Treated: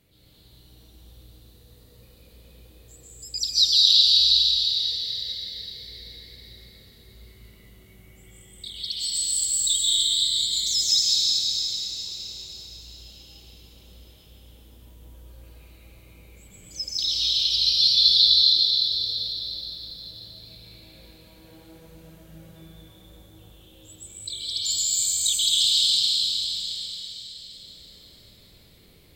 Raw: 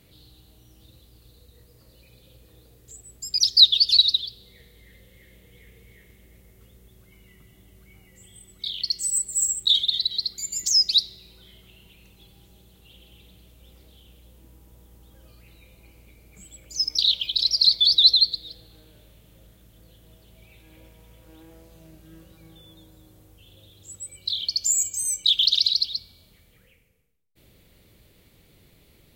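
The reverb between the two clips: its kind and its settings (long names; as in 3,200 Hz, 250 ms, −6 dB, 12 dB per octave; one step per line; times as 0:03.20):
dense smooth reverb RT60 4.8 s, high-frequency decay 0.85×, pre-delay 115 ms, DRR −9 dB
level −7.5 dB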